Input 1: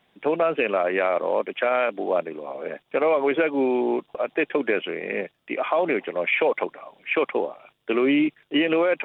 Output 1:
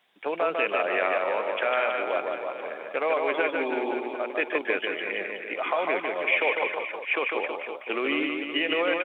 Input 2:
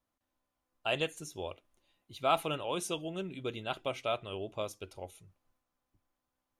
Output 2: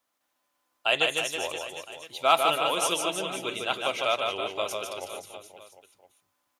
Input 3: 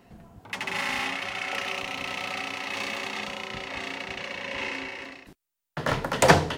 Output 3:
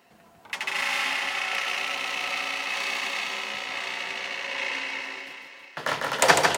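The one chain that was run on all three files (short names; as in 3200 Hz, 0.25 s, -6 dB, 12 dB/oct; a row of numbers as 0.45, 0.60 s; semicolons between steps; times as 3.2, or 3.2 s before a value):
HPF 940 Hz 6 dB/oct; on a send: reverse bouncing-ball echo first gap 0.15 s, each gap 1.15×, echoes 5; on the sum: match loudness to -27 LUFS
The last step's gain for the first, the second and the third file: -0.5, +10.0, +2.5 dB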